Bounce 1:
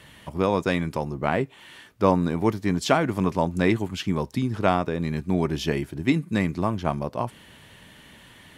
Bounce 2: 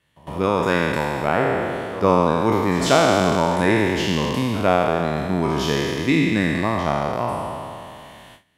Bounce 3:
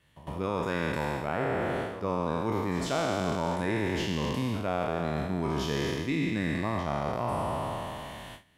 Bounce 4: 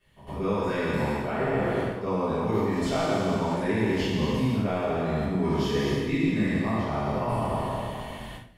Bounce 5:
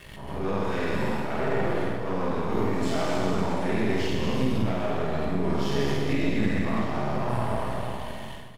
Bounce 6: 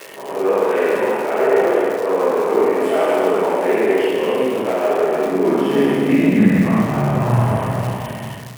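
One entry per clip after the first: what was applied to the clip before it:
spectral trails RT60 2.50 s; gate with hold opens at -34 dBFS; pre-echo 0.107 s -17.5 dB
low shelf 110 Hz +6.5 dB; reverse; compressor 4:1, threshold -28 dBFS, peak gain reduction 15 dB; reverse
shoebox room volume 45 m³, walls mixed, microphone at 1.7 m; gain -7.5 dB
half-wave gain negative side -12 dB; reverse bouncing-ball echo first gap 50 ms, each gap 1.5×, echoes 5; backwards sustainer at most 49 dB/s
band shelf 5100 Hz -14.5 dB 1.2 oct; crackle 330/s -33 dBFS; high-pass sweep 430 Hz -> 120 Hz, 5.01–7.18; gain +8 dB

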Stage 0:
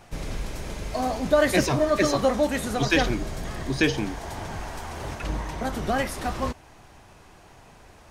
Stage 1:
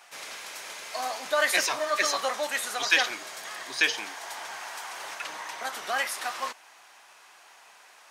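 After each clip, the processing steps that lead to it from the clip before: HPF 1100 Hz 12 dB/oct; gain +3 dB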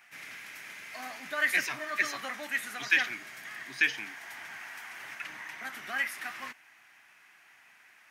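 graphic EQ 125/250/500/1000/2000/4000/8000 Hz +8/+5/-11/-8/+8/-8/-8 dB; gain -3.5 dB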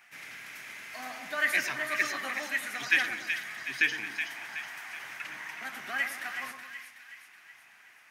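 split-band echo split 1600 Hz, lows 0.11 s, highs 0.373 s, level -7 dB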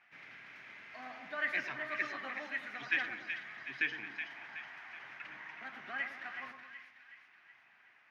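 air absorption 260 m; gain -5 dB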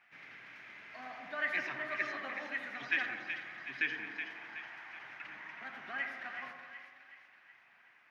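tape echo 83 ms, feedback 85%, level -8 dB, low-pass 1800 Hz

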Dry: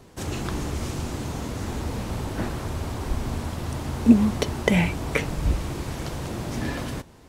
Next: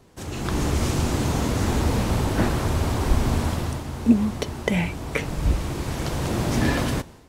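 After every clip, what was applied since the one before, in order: AGC gain up to 12.5 dB; gain -4.5 dB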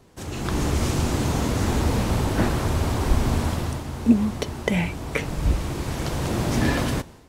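nothing audible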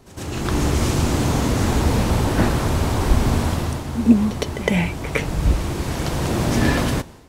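pre-echo 0.11 s -12.5 dB; gain +3.5 dB

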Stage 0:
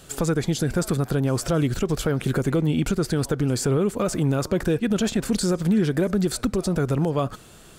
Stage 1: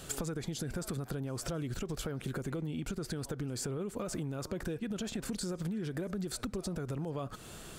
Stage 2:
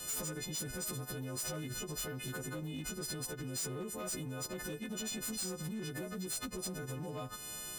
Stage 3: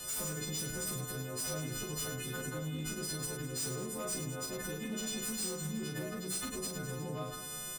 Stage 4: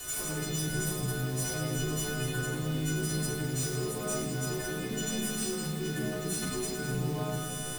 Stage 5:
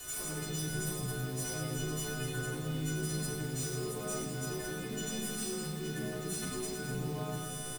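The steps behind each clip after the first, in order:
limiter -17 dBFS, peak gain reduction 4 dB; compressor 10:1, threshold -34 dBFS, peak gain reduction 14 dB
frequency quantiser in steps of 3 st; hard clip -32 dBFS, distortion -9 dB; gain -3.5 dB
reverse bouncing-ball echo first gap 40 ms, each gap 1.6×, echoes 5
bit-crush 8-bit; shoebox room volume 3600 m³, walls mixed, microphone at 3.4 m
echo 89 ms -12 dB; gain -4.5 dB

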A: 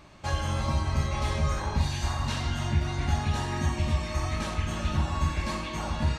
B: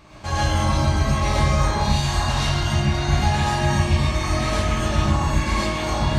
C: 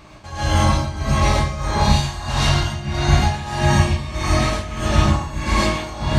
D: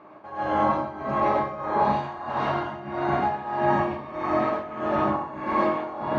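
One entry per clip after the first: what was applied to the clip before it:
non-linear reverb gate 0.16 s rising, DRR -6.5 dB; gain +2 dB
tremolo 1.6 Hz, depth 80%; gain +5 dB
Butterworth band-pass 620 Hz, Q 0.59

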